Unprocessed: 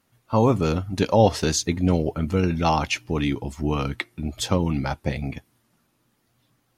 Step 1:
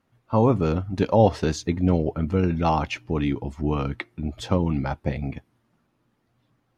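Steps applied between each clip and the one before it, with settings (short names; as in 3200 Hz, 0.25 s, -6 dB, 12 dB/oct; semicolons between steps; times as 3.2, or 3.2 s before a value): LPF 1700 Hz 6 dB/oct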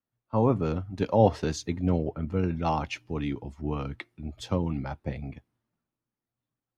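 three-band expander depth 40%; gain -5.5 dB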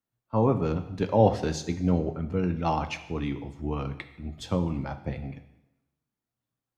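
plate-style reverb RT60 0.91 s, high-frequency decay 0.95×, DRR 8.5 dB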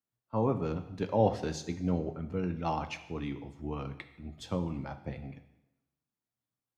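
low shelf 64 Hz -6 dB; gain -5.5 dB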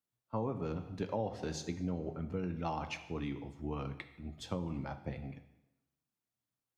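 compressor 6:1, threshold -31 dBFS, peak gain reduction 11.5 dB; gain -1 dB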